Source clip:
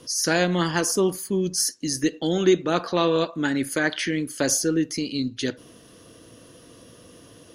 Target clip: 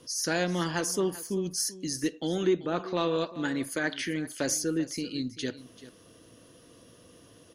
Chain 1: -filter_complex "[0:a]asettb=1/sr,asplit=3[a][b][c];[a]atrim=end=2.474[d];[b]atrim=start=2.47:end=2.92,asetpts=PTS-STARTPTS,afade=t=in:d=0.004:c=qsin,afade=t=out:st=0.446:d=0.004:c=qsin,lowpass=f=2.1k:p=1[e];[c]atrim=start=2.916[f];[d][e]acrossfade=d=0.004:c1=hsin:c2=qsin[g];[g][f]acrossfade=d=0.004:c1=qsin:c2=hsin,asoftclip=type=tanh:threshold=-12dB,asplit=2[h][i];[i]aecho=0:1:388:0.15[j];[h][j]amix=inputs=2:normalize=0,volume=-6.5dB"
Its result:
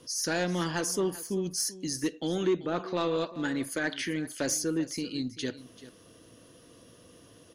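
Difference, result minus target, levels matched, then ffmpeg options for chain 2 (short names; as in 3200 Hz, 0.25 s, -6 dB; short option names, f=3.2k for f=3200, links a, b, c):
soft clip: distortion +12 dB
-filter_complex "[0:a]asettb=1/sr,asplit=3[a][b][c];[a]atrim=end=2.474[d];[b]atrim=start=2.47:end=2.92,asetpts=PTS-STARTPTS,afade=t=in:d=0.004:c=qsin,afade=t=out:st=0.446:d=0.004:c=qsin,lowpass=f=2.1k:p=1[e];[c]atrim=start=2.916[f];[d][e]acrossfade=d=0.004:c1=hsin:c2=qsin[g];[g][f]acrossfade=d=0.004:c1=qsin:c2=hsin,asoftclip=type=tanh:threshold=-4.5dB,asplit=2[h][i];[i]aecho=0:1:388:0.15[j];[h][j]amix=inputs=2:normalize=0,volume=-6.5dB"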